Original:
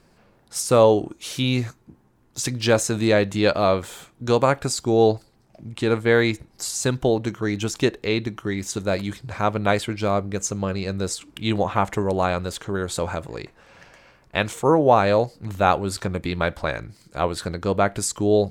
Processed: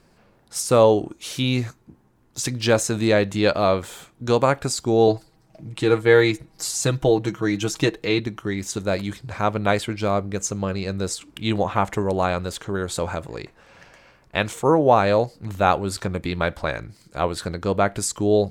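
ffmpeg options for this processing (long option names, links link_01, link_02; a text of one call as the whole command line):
ffmpeg -i in.wav -filter_complex "[0:a]asettb=1/sr,asplit=3[link_01][link_02][link_03];[link_01]atrim=end=5.074[link_04];[link_02]atrim=start=5.07:end=8.2,asetpts=PTS-STARTPTS,afade=type=in:duration=0.004:curve=qsin,afade=type=out:start_time=3.126:duration=0.004:curve=qsin,aecho=1:1:6.3:0.65,atrim=end_sample=138033[link_05];[link_03]atrim=start=8.196[link_06];[link_04][link_05]acrossfade=duration=0.004:curve1=hsin:curve2=qsin[link_07];[link_07][link_06]acrossfade=duration=0.004:curve1=qsin:curve2=hsin" out.wav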